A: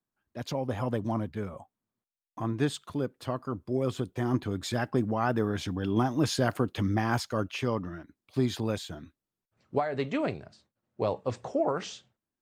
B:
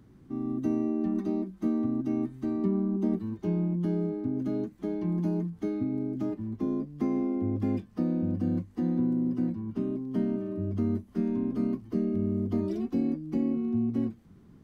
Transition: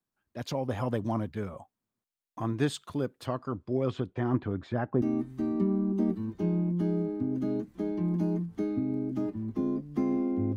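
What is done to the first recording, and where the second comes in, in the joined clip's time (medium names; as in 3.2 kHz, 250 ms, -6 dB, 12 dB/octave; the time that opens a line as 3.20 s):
A
3.26–5.02 s: low-pass 7.8 kHz -> 1 kHz
5.02 s: go over to B from 2.06 s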